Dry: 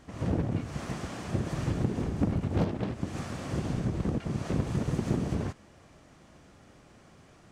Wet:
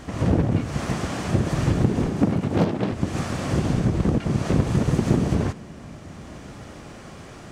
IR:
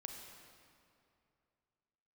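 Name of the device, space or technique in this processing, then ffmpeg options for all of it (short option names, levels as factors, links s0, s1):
ducked reverb: -filter_complex "[0:a]asplit=3[s0][s1][s2];[1:a]atrim=start_sample=2205[s3];[s1][s3]afir=irnorm=-1:irlink=0[s4];[s2]apad=whole_len=331202[s5];[s4][s5]sidechaincompress=threshold=0.00631:ratio=8:attack=16:release=783,volume=2[s6];[s0][s6]amix=inputs=2:normalize=0,asettb=1/sr,asplit=3[s7][s8][s9];[s7]atrim=end=2.074[s10];[s8]atrim=start=2.07:end=2.93,asetpts=PTS-STARTPTS,afade=t=in:d=0.004:c=qsin,afade=t=out:st=0.856:d=0.004:c=qsin,highpass=130[s11];[s9]atrim=start=2.926[s12];[s10][s11]acrossfade=d=0.004:c1=hsin:c2=qsin[s13];[s13][s12]acrossfade=d=0.004:c1=qsin:c2=hsin,volume=2.51"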